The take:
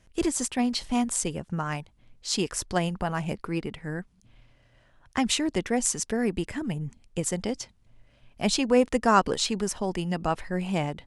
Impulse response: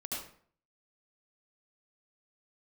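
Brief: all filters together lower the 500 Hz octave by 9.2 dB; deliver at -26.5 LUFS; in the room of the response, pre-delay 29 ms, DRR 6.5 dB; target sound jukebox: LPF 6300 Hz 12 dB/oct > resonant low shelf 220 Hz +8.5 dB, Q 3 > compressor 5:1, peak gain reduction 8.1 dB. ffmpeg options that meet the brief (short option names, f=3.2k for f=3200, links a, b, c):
-filter_complex "[0:a]equalizer=f=500:t=o:g=-8.5,asplit=2[a][b];[1:a]atrim=start_sample=2205,adelay=29[c];[b][c]afir=irnorm=-1:irlink=0,volume=-8dB[d];[a][d]amix=inputs=2:normalize=0,lowpass=6.3k,lowshelf=f=220:t=q:w=3:g=8.5,acompressor=threshold=-20dB:ratio=5,volume=-0.5dB"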